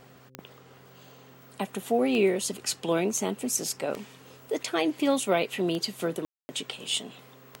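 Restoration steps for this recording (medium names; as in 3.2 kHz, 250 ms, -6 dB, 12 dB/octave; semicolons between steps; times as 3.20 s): de-click; de-hum 129.9 Hz, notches 4; room tone fill 6.25–6.49 s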